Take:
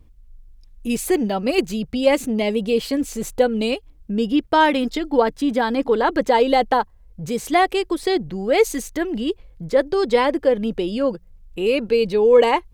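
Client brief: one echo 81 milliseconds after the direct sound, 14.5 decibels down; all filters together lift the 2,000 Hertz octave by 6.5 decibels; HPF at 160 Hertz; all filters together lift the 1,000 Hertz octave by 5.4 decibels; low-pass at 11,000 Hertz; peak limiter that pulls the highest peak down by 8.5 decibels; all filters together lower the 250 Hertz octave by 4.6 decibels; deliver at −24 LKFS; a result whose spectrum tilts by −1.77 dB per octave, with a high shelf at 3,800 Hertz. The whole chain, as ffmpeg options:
ffmpeg -i in.wav -af "highpass=160,lowpass=11000,equalizer=frequency=250:width_type=o:gain=-5.5,equalizer=frequency=1000:width_type=o:gain=6,equalizer=frequency=2000:width_type=o:gain=7.5,highshelf=frequency=3800:gain=-5.5,alimiter=limit=-8dB:level=0:latency=1,aecho=1:1:81:0.188,volume=-3dB" out.wav

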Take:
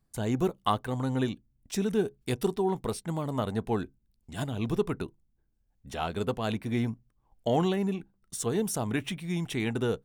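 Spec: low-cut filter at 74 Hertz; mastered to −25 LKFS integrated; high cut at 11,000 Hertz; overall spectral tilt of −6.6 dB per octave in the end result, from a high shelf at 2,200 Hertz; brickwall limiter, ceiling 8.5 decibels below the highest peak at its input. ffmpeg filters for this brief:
ffmpeg -i in.wav -af "highpass=74,lowpass=11000,highshelf=frequency=2200:gain=-4.5,volume=8dB,alimiter=limit=-13dB:level=0:latency=1" out.wav

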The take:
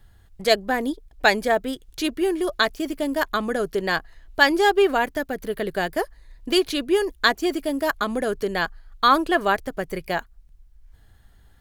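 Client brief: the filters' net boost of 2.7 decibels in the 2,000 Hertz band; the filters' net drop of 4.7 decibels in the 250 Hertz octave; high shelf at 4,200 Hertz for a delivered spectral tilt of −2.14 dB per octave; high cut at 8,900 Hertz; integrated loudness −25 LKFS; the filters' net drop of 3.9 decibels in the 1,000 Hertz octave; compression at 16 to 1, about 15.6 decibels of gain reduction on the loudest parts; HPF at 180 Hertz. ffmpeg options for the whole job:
ffmpeg -i in.wav -af "highpass=180,lowpass=8900,equalizer=frequency=250:width_type=o:gain=-5.5,equalizer=frequency=1000:width_type=o:gain=-7,equalizer=frequency=2000:width_type=o:gain=4.5,highshelf=frequency=4200:gain=8.5,acompressor=threshold=-24dB:ratio=16,volume=5dB" out.wav

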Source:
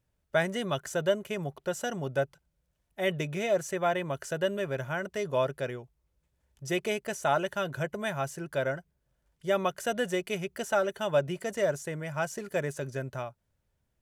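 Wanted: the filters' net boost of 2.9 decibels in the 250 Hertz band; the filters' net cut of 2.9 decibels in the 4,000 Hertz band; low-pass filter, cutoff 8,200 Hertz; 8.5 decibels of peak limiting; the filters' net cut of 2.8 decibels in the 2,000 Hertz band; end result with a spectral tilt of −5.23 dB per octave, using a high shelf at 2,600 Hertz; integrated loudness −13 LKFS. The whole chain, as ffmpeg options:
ffmpeg -i in.wav -af "lowpass=8200,equalizer=frequency=250:width_type=o:gain=4.5,equalizer=frequency=2000:width_type=o:gain=-5.5,highshelf=frequency=2600:gain=8,equalizer=frequency=4000:width_type=o:gain=-8.5,volume=21dB,alimiter=limit=-2dB:level=0:latency=1" out.wav

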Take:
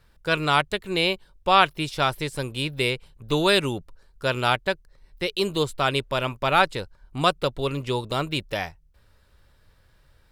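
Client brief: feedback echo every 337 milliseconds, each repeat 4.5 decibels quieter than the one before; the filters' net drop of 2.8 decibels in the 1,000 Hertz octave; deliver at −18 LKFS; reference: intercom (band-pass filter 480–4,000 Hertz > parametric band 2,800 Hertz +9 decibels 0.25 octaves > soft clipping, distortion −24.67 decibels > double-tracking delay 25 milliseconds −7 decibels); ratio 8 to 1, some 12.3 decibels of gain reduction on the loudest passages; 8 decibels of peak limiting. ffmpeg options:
ffmpeg -i in.wav -filter_complex "[0:a]equalizer=frequency=1000:width_type=o:gain=-3.5,acompressor=threshold=-28dB:ratio=8,alimiter=limit=-22.5dB:level=0:latency=1,highpass=480,lowpass=4000,equalizer=frequency=2800:width_type=o:width=0.25:gain=9,aecho=1:1:337|674|1011|1348|1685|2022|2359|2696|3033:0.596|0.357|0.214|0.129|0.0772|0.0463|0.0278|0.0167|0.01,asoftclip=threshold=-19.5dB,asplit=2[link_01][link_02];[link_02]adelay=25,volume=-7dB[link_03];[link_01][link_03]amix=inputs=2:normalize=0,volume=16.5dB" out.wav

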